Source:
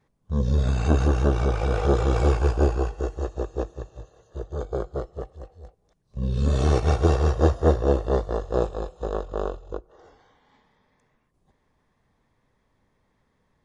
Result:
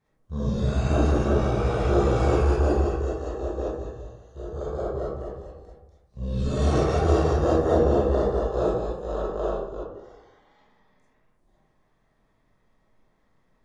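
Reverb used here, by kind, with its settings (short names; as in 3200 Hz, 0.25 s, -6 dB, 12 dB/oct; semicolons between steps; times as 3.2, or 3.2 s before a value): digital reverb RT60 0.84 s, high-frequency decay 0.4×, pre-delay 5 ms, DRR -8 dB; gain -7.5 dB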